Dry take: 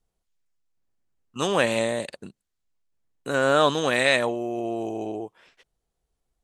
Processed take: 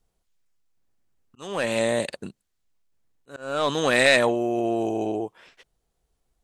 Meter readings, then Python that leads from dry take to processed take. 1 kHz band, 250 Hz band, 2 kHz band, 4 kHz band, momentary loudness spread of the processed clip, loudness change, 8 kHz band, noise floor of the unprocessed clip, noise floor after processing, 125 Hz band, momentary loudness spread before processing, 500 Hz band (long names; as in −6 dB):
−2.0 dB, +1.5 dB, +1.0 dB, 0.0 dB, 21 LU, +0.5 dB, +1.0 dB, −81 dBFS, −77 dBFS, −1.0 dB, 17 LU, 0.0 dB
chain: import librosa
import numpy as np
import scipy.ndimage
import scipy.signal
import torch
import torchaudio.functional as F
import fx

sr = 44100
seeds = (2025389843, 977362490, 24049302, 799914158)

y = 10.0 ** (-11.0 / 20.0) * np.tanh(x / 10.0 ** (-11.0 / 20.0))
y = fx.auto_swell(y, sr, attack_ms=638.0)
y = y * librosa.db_to_amplitude(4.5)